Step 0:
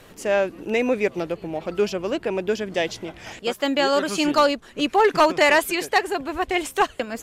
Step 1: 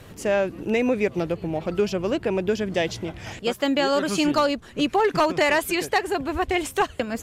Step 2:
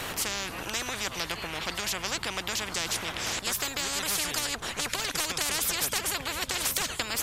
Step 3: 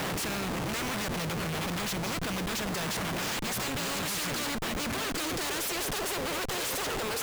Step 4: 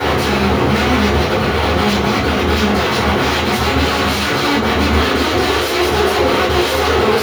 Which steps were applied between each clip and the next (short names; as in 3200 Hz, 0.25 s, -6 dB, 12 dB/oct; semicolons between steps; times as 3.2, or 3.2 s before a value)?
bell 92 Hz +11 dB 2 oct; compressor 2.5:1, threshold -18 dBFS, peak gain reduction 5 dB
spectral compressor 10:1; gain -2.5 dB
high-pass sweep 160 Hz -> 420 Hz, 4.04–6.12; Schmitt trigger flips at -36 dBFS; gain -1 dB
reverb RT60 0.40 s, pre-delay 3 ms, DRR -11 dB; gain -5 dB